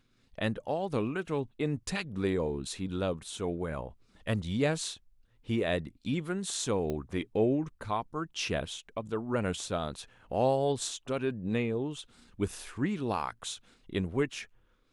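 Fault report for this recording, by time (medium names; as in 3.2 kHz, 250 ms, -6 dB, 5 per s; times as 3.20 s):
6.90 s: pop -22 dBFS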